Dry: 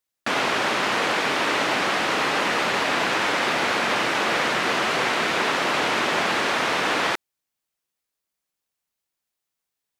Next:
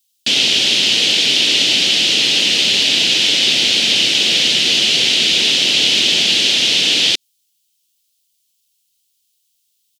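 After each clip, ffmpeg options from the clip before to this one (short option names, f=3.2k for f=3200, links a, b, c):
-filter_complex "[0:a]firequalizer=gain_entry='entry(240,0);entry(1100,-22);entry(3000,15)':delay=0.05:min_phase=1,acrossover=split=6900[a][b];[b]acompressor=threshold=-40dB:ratio=4:attack=1:release=60[c];[a][c]amix=inputs=2:normalize=0,volume=3.5dB"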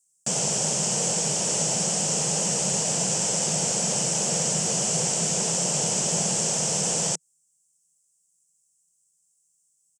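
-af "firequalizer=gain_entry='entry(100,0);entry(160,14);entry(270,-11);entry(480,5);entry(910,8);entry(2100,-15);entry(3800,-26);entry(5500,-2);entry(7800,13);entry(13000,-16)':delay=0.05:min_phase=1,volume=-5dB"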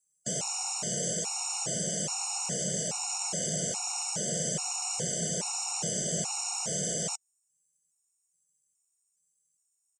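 -af "afftfilt=real='re*gt(sin(2*PI*1.2*pts/sr)*(1-2*mod(floor(b*sr/1024/730),2)),0)':imag='im*gt(sin(2*PI*1.2*pts/sr)*(1-2*mod(floor(b*sr/1024/730),2)),0)':win_size=1024:overlap=0.75,volume=-4.5dB"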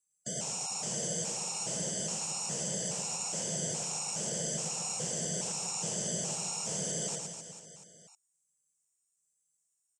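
-af "aecho=1:1:110|253|438.9|680.6|994.7:0.631|0.398|0.251|0.158|0.1,volume=-5dB"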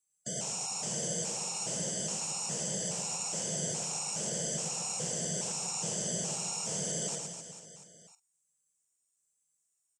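-filter_complex "[0:a]asplit=2[a][b];[b]adelay=46,volume=-13.5dB[c];[a][c]amix=inputs=2:normalize=0"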